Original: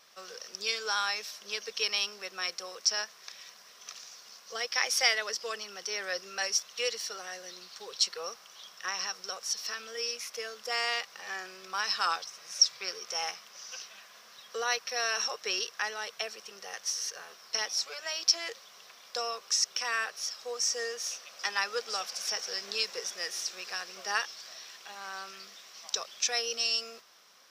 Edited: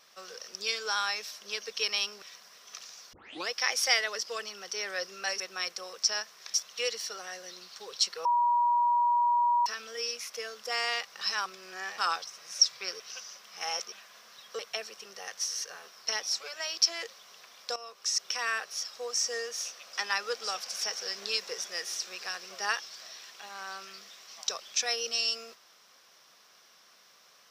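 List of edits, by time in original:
0:02.22–0:03.36: move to 0:06.54
0:04.27: tape start 0.36 s
0:08.25–0:09.66: beep over 959 Hz −22 dBFS
0:11.21–0:11.98: reverse
0:13.00–0:13.92: reverse
0:14.59–0:16.05: remove
0:19.22–0:19.72: fade in, from −14 dB

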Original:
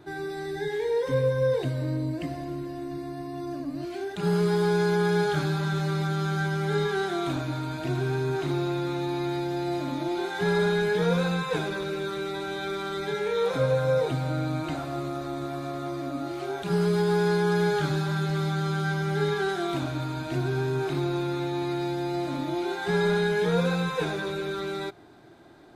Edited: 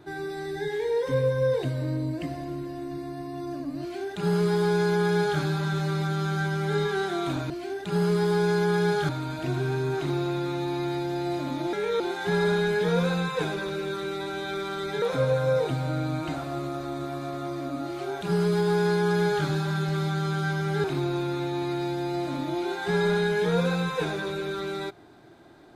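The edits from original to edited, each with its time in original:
0:03.81–0:05.40: duplicate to 0:07.50
0:13.16–0:13.43: move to 0:10.14
0:19.25–0:20.84: remove

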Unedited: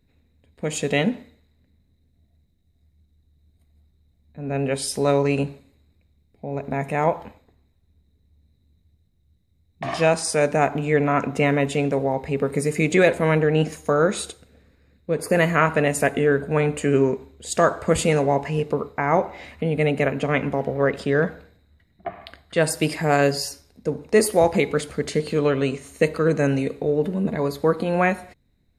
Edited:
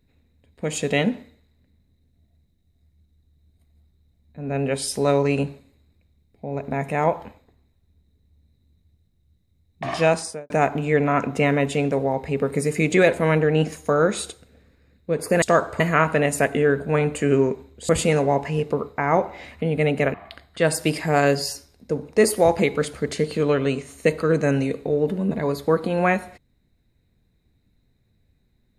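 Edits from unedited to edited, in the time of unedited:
0:10.13–0:10.50: fade out and dull
0:17.51–0:17.89: move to 0:15.42
0:20.14–0:22.10: remove

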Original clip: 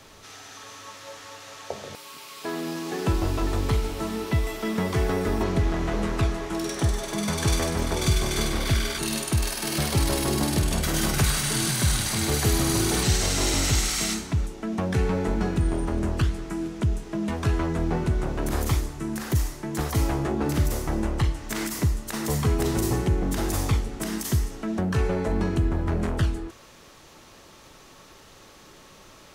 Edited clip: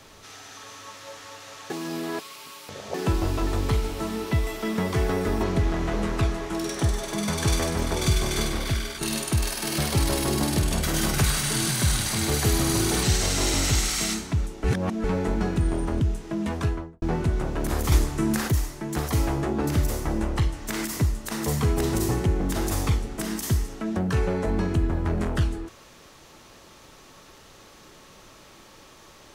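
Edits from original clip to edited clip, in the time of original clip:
0:01.70–0:02.94: reverse
0:08.37–0:09.01: fade out, to −6.5 dB
0:14.64–0:15.04: reverse
0:16.01–0:16.83: remove
0:17.36–0:17.84: fade out and dull
0:18.74–0:19.30: clip gain +6.5 dB

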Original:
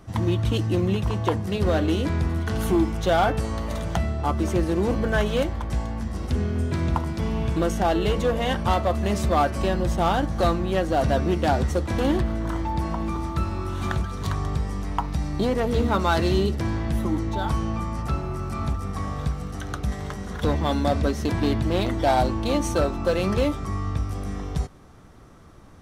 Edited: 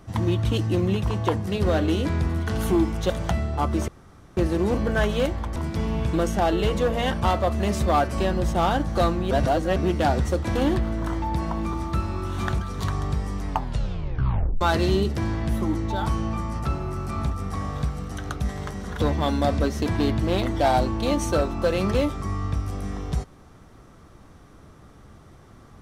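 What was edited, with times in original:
0:03.10–0:03.76: remove
0:04.54: splice in room tone 0.49 s
0:05.73–0:06.99: remove
0:10.74–0:11.19: reverse
0:14.91: tape stop 1.13 s

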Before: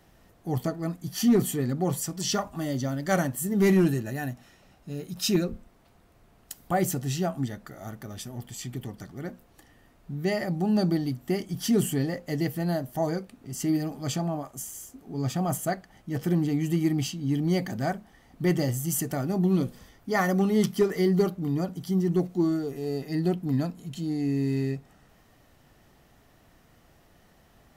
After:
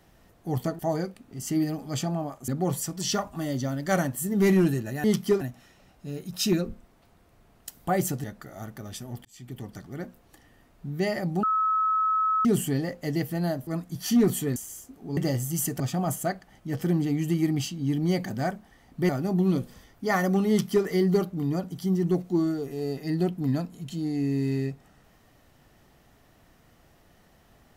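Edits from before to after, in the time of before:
0:00.79–0:01.68: swap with 0:12.92–0:14.61
0:07.07–0:07.49: remove
0:08.50–0:08.93: fade in linear
0:10.68–0:11.70: beep over 1,290 Hz −21 dBFS
0:18.51–0:19.14: move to 0:15.22
0:20.54–0:20.91: duplicate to 0:04.24

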